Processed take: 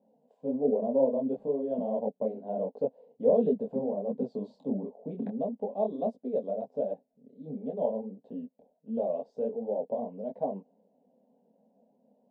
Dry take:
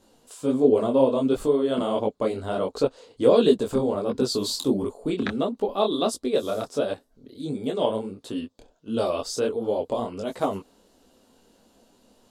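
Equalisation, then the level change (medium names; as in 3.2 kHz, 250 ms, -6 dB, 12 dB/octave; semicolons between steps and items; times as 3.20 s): Chebyshev band-pass 180–740 Hz, order 2; static phaser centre 340 Hz, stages 6; -4.0 dB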